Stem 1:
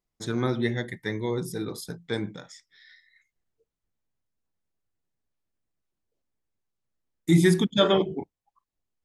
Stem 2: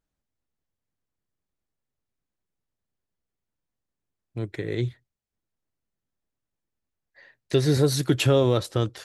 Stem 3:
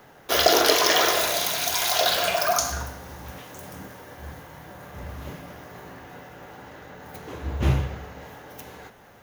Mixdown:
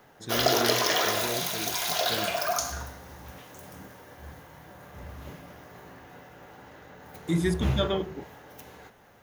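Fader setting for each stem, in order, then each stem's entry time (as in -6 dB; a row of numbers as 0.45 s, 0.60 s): -7.0 dB, mute, -5.5 dB; 0.00 s, mute, 0.00 s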